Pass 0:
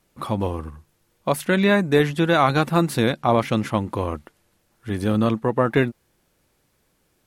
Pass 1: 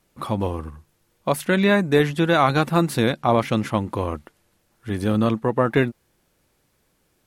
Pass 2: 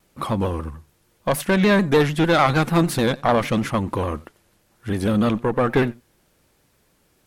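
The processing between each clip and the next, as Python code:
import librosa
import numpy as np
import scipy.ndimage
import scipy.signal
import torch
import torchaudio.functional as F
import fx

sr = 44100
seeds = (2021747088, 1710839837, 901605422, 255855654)

y1 = x
y2 = fx.diode_clip(y1, sr, knee_db=-17.5)
y2 = y2 + 10.0 ** (-23.5 / 20.0) * np.pad(y2, (int(89 * sr / 1000.0), 0))[:len(y2)]
y2 = fx.vibrato_shape(y2, sr, shape='saw_down', rate_hz=6.7, depth_cents=100.0)
y2 = y2 * librosa.db_to_amplitude(4.0)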